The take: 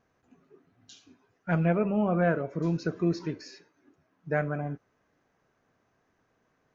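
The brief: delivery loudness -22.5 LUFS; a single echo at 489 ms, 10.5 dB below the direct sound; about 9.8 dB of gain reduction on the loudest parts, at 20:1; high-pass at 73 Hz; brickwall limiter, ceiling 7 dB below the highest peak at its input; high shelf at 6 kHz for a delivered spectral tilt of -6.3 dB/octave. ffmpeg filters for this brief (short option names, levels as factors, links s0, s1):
-af "highpass=73,highshelf=f=6000:g=5.5,acompressor=threshold=0.0316:ratio=20,alimiter=level_in=1.5:limit=0.0631:level=0:latency=1,volume=0.668,aecho=1:1:489:0.299,volume=6.68"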